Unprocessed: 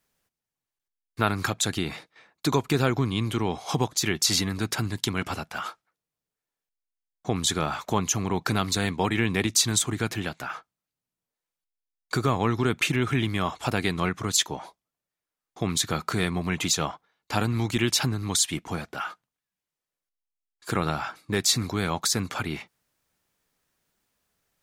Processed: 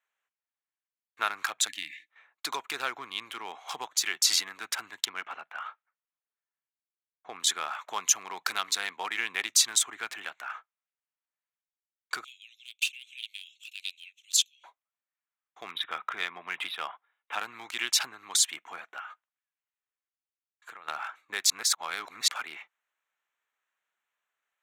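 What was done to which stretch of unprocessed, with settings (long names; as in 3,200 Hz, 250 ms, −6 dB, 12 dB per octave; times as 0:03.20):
0:01.68–0:02.08: time-frequency box erased 340–1,700 Hz
0:05.05–0:07.40: high-frequency loss of the air 200 metres
0:07.93–0:08.61: high-shelf EQ 3,700 Hz +4.5 dB
0:12.24–0:14.64: Chebyshev high-pass filter 2,600 Hz, order 6
0:15.71–0:17.39: linear-phase brick-wall low-pass 3,900 Hz
0:18.99–0:20.88: downward compressor, threshold −34 dBFS
0:21.50–0:22.28: reverse
whole clip: adaptive Wiener filter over 9 samples; high-pass filter 1,200 Hz 12 dB per octave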